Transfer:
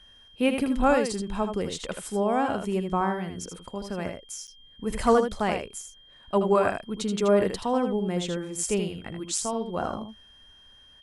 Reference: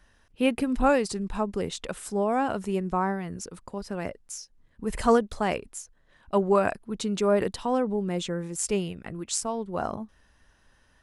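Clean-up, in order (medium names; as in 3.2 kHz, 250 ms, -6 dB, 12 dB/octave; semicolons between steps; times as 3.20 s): band-stop 3.2 kHz, Q 30; interpolate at 4.47 s, 8.2 ms; inverse comb 79 ms -7 dB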